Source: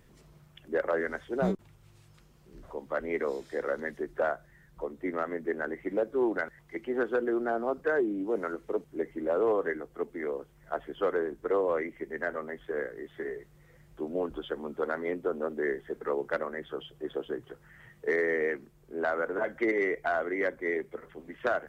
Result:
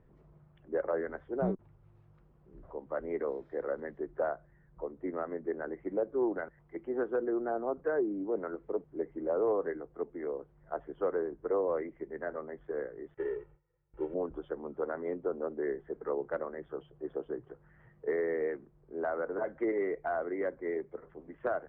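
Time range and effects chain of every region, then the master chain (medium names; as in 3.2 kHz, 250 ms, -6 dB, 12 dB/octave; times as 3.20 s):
13.14–14.14 s: CVSD coder 16 kbps + comb 2.2 ms, depth 93% + gate with hold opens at -43 dBFS, closes at -50 dBFS
whole clip: low-pass 1.1 kHz 12 dB/octave; peaking EQ 230 Hz -4.5 dB 0.28 oct; trim -2.5 dB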